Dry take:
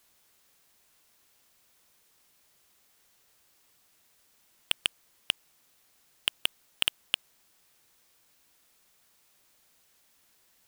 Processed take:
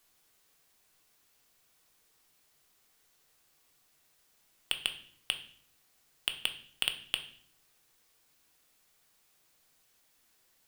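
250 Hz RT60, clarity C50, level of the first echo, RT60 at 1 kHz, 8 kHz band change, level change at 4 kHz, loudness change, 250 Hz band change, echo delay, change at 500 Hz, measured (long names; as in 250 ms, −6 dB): 0.90 s, 12.0 dB, no echo audible, 0.50 s, −3.5 dB, −3.0 dB, −3.5 dB, −3.0 dB, no echo audible, −3.0 dB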